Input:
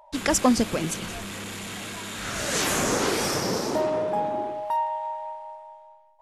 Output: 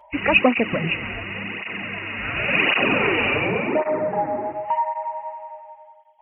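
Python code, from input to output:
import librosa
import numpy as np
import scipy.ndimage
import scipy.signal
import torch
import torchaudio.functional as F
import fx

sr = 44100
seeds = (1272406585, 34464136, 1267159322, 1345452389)

y = fx.freq_compress(x, sr, knee_hz=1800.0, ratio=4.0)
y = fx.lowpass(y, sr, hz=2600.0, slope=24, at=(3.47, 4.49))
y = fx.flanger_cancel(y, sr, hz=0.91, depth_ms=6.4)
y = y * librosa.db_to_amplitude(6.0)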